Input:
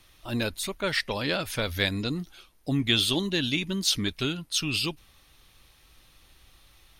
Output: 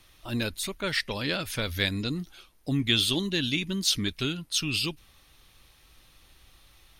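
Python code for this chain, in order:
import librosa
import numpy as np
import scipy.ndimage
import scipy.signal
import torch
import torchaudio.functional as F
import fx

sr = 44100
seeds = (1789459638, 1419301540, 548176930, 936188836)

y = fx.dynamic_eq(x, sr, hz=740.0, q=0.91, threshold_db=-42.0, ratio=4.0, max_db=-5)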